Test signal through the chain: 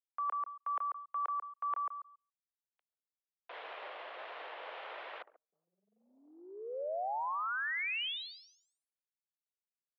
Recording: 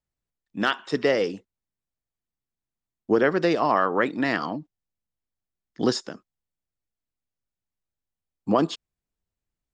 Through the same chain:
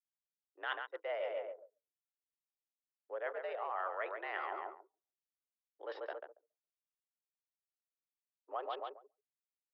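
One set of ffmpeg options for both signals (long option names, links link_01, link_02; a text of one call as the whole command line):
ffmpeg -i in.wav -filter_complex "[0:a]highshelf=frequency=2000:gain=-5.5,asplit=2[link_01][link_02];[link_02]adelay=140,lowpass=frequency=2600:poles=1,volume=-8dB,asplit=2[link_03][link_04];[link_04]adelay=140,lowpass=frequency=2600:poles=1,volume=0.32,asplit=2[link_05][link_06];[link_06]adelay=140,lowpass=frequency=2600:poles=1,volume=0.32,asplit=2[link_07][link_08];[link_08]adelay=140,lowpass=frequency=2600:poles=1,volume=0.32[link_09];[link_01][link_03][link_05][link_07][link_09]amix=inputs=5:normalize=0,areverse,acompressor=threshold=-32dB:ratio=12,areverse,anlmdn=0.1,highpass=frequency=440:width_type=q:width=0.5412,highpass=frequency=440:width_type=q:width=1.307,lowpass=frequency=3300:width_type=q:width=0.5176,lowpass=frequency=3300:width_type=q:width=0.7071,lowpass=frequency=3300:width_type=q:width=1.932,afreqshift=85,volume=-1.5dB" out.wav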